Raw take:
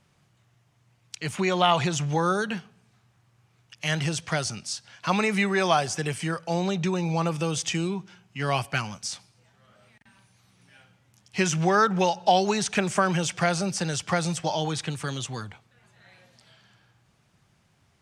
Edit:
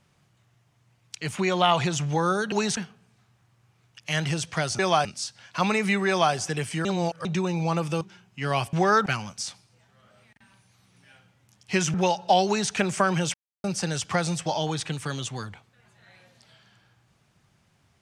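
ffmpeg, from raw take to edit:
-filter_complex "[0:a]asplit=13[a][b][c][d][e][f][g][h][i][j][k][l][m];[a]atrim=end=2.522[n];[b]atrim=start=12.438:end=12.692[o];[c]atrim=start=2.518:end=4.542[p];[d]atrim=start=5.568:end=5.832[q];[e]atrim=start=4.538:end=6.342[r];[f]atrim=start=6.338:end=6.742,asetpts=PTS-STARTPTS,areverse[s];[g]atrim=start=6.738:end=7.502[t];[h]atrim=start=7.988:end=8.712[u];[i]atrim=start=11.588:end=11.922[v];[j]atrim=start=8.708:end=11.592[w];[k]atrim=start=11.918:end=13.32,asetpts=PTS-STARTPTS,afade=t=out:st=1.398:d=0.004:c=hsin[x];[l]atrim=start=13.32:end=13.62,asetpts=PTS-STARTPTS,volume=0[y];[m]atrim=start=13.62,asetpts=PTS-STARTPTS,afade=t=in:d=0.004:c=hsin[z];[n][o]acrossfade=d=0.004:c1=hsin:c2=hsin[aa];[aa][p]acrossfade=d=0.004:c1=hsin:c2=hsin[ab];[ab][q]acrossfade=d=0.004:c1=hsin:c2=hsin[ac];[ac][r]acrossfade=d=0.004:c1=hsin:c2=hsin[ad];[ad][s]acrossfade=d=0.004:c1=hsin:c2=hsin[ae];[ae][t]acrossfade=d=0.004:c1=hsin:c2=hsin[af];[af][u]acrossfade=d=0.004:c1=hsin:c2=hsin[ag];[ag][v]acrossfade=d=0.004:c1=hsin:c2=hsin[ah];[ah][w]acrossfade=d=0.004:c1=hsin:c2=hsin[ai];[x][y][z]concat=n=3:v=0:a=1[aj];[ai][aj]acrossfade=d=0.004:c1=hsin:c2=hsin"

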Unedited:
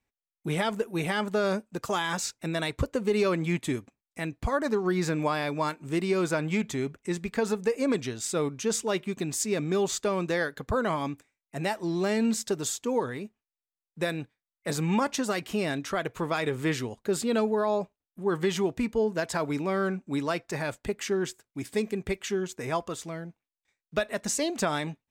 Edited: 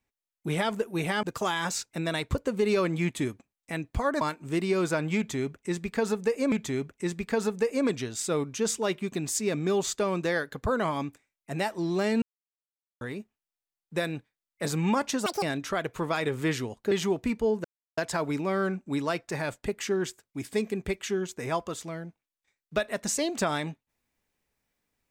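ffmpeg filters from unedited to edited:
-filter_complex "[0:a]asplit=10[a][b][c][d][e][f][g][h][i][j];[a]atrim=end=1.232[k];[b]atrim=start=1.708:end=4.692[l];[c]atrim=start=5.608:end=7.922[m];[d]atrim=start=6.568:end=12.27,asetpts=PTS-STARTPTS,afade=t=out:st=5.698:d=0.004:c=hsin[n];[e]atrim=start=12.27:end=13.06,asetpts=PTS-STARTPTS,volume=0[o];[f]atrim=start=13.06:end=15.314,asetpts=PTS-STARTPTS,afade=t=in:d=0.004:c=hsin[p];[g]atrim=start=15.31:end=15.63,asetpts=PTS-STARTPTS,asetrate=85995,aresample=44100[q];[h]atrim=start=15.626:end=17.122[r];[i]atrim=start=18.448:end=19.18,asetpts=PTS-STARTPTS,afade=t=out:st=0.728:d=0.004:c=hsin,apad=pad_dur=0.33[s];[j]atrim=start=19.18,asetpts=PTS-STARTPTS,afade=t=in:d=0.004:c=hsin[t];[k][l]acrossfade=d=0.004:c1=hsin:c2=hsin[u];[u][m]acrossfade=d=0.004:c1=hsin:c2=hsin[v];[n][o][p]concat=n=3:v=0:a=1[w];[v][w]acrossfade=d=0.004:c1=hsin:c2=hsin[x];[x][q]acrossfade=d=0.004:c1=hsin:c2=hsin[y];[y][r]acrossfade=d=0.004:c1=hsin:c2=hsin[z];[s][t]concat=n=2:v=0:a=1[aa];[z][aa]acrossfade=d=0.004:c1=hsin:c2=hsin"

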